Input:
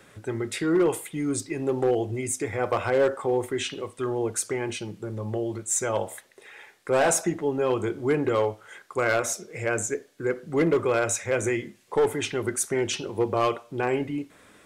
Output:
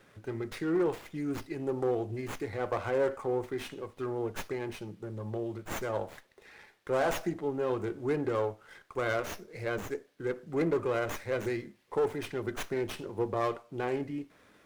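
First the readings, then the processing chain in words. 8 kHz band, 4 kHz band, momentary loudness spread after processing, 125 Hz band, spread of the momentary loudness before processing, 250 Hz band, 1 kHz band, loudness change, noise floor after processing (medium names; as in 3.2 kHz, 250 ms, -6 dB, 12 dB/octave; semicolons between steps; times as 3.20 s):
-20.0 dB, -9.5 dB, 10 LU, -6.0 dB, 9 LU, -6.5 dB, -7.0 dB, -7.0 dB, -63 dBFS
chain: dynamic bell 3 kHz, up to -6 dB, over -48 dBFS, Q 1.7; sliding maximum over 5 samples; trim -6.5 dB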